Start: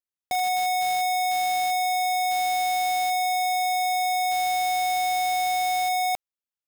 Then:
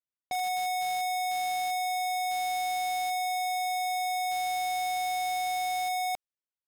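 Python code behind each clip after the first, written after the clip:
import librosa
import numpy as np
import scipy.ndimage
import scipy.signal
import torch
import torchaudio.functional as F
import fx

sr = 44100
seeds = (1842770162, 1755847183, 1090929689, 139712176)

y = fx.env_lowpass(x, sr, base_hz=2800.0, full_db=-26.0)
y = y * librosa.db_to_amplitude(-6.0)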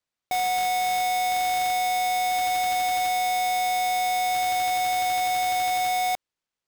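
y = fx.sample_hold(x, sr, seeds[0], rate_hz=13000.0, jitter_pct=0)
y = y * librosa.db_to_amplitude(6.0)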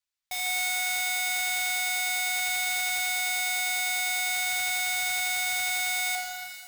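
y = fx.tone_stack(x, sr, knobs='10-0-10')
y = fx.rev_shimmer(y, sr, seeds[1], rt60_s=2.2, semitones=12, shimmer_db=-8, drr_db=2.5)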